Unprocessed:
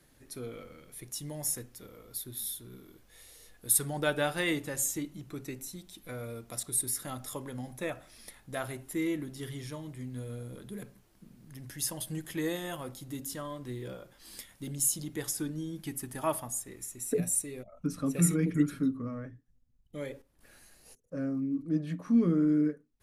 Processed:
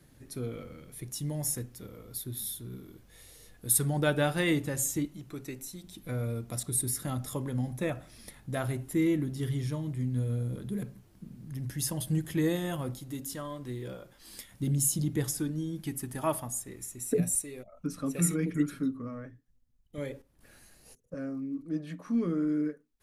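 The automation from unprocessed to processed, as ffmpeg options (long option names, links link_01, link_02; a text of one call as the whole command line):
ffmpeg -i in.wav -af "asetnsamples=nb_out_samples=441:pad=0,asendcmd='5.06 equalizer g 0;5.84 equalizer g 11;12.99 equalizer g 2;14.52 equalizer g 13;15.38 equalizer g 5;17.35 equalizer g -3;19.98 equalizer g 5;21.14 equalizer g -6.5',equalizer=frequency=110:width_type=o:width=2.9:gain=9" out.wav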